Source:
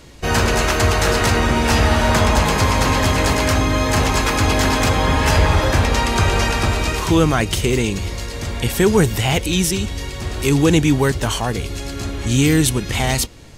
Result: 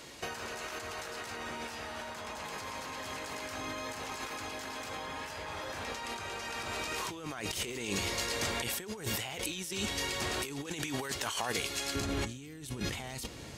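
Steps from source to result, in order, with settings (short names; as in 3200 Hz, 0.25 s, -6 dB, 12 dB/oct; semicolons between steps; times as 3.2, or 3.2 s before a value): HPF 540 Hz 6 dB/oct, from 10.66 s 1100 Hz, from 11.95 s 130 Hz; negative-ratio compressor -30 dBFS, ratio -1; gain -9 dB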